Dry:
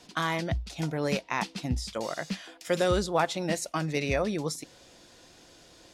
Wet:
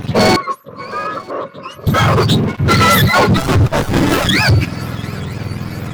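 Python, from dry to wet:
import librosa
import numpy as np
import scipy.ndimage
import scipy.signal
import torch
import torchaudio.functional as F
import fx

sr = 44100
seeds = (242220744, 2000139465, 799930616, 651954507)

p1 = fx.octave_mirror(x, sr, pivot_hz=850.0)
p2 = fx.rider(p1, sr, range_db=3, speed_s=0.5)
p3 = p1 + F.gain(torch.from_numpy(p2), 3.0).numpy()
p4 = fx.leveller(p3, sr, passes=5)
p5 = fx.double_bandpass(p4, sr, hz=790.0, octaves=1.0, at=(0.36, 1.87))
p6 = p5 + fx.echo_swing(p5, sr, ms=944, ratio=3, feedback_pct=55, wet_db=-23, dry=0)
y = fx.running_max(p6, sr, window=17, at=(3.37, 4.29))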